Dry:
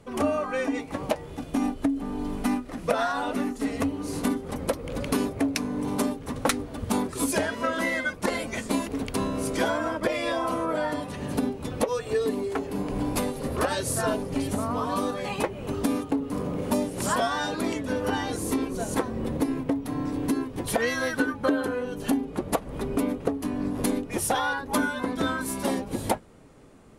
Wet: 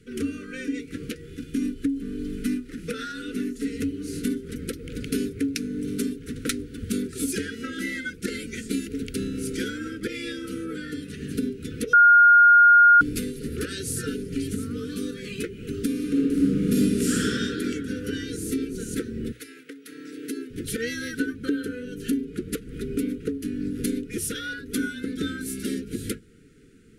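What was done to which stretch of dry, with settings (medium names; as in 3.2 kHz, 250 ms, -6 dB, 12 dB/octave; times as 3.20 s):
11.93–13.01 s: bleep 1.42 kHz -6 dBFS
15.94–17.27 s: reverb throw, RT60 2.3 s, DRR -6 dB
19.31–20.49 s: high-pass 1.1 kHz -> 320 Hz
whole clip: Chebyshev band-stop 460–1400 Hz, order 4; hum notches 60/120 Hz; dynamic bell 1.6 kHz, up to -4 dB, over -44 dBFS, Q 0.92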